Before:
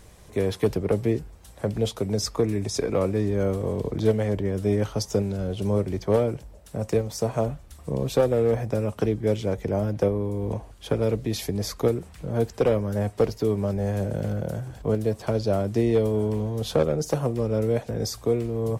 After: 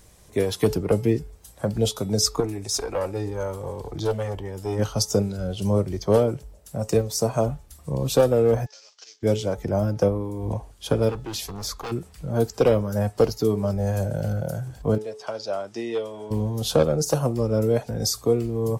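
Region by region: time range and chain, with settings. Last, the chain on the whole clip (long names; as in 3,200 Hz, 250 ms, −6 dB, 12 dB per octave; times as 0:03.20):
0:02.40–0:04.79: parametric band 200 Hz −5 dB 1.1 octaves + tube saturation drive 19 dB, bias 0.4
0:08.66–0:09.23: variable-slope delta modulation 32 kbit/s + high-pass filter 690 Hz + first difference
0:11.09–0:11.92: high-shelf EQ 3,600 Hz −6 dB + gain into a clipping stage and back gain 28.5 dB + highs frequency-modulated by the lows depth 0.39 ms
0:14.98–0:16.31: high-pass filter 890 Hz 6 dB per octave + high-frequency loss of the air 65 metres + notch filter 4,300 Hz, Q 13
whole clip: noise reduction from a noise print of the clip's start 7 dB; bass and treble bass 0 dB, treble +6 dB; hum removal 430.4 Hz, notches 10; level +3 dB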